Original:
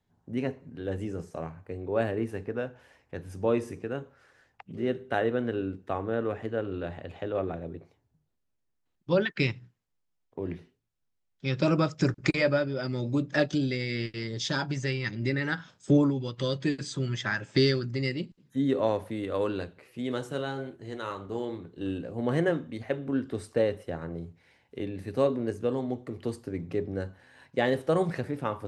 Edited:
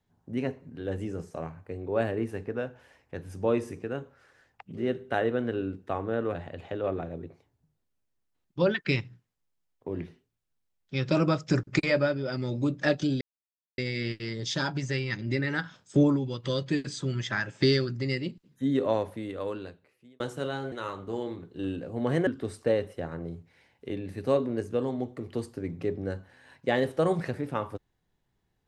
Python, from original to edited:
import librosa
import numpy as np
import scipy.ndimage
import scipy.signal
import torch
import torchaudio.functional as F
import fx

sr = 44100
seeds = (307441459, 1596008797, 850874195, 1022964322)

y = fx.edit(x, sr, fx.cut(start_s=6.35, length_s=0.51),
    fx.insert_silence(at_s=13.72, length_s=0.57),
    fx.fade_out_span(start_s=18.84, length_s=1.3),
    fx.cut(start_s=20.66, length_s=0.28),
    fx.cut(start_s=22.49, length_s=0.68), tone=tone)